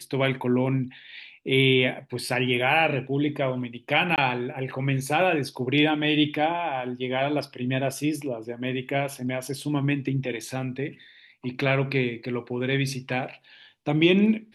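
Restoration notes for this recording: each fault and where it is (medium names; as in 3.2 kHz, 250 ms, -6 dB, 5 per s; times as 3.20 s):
4.16–4.18 s: dropout 18 ms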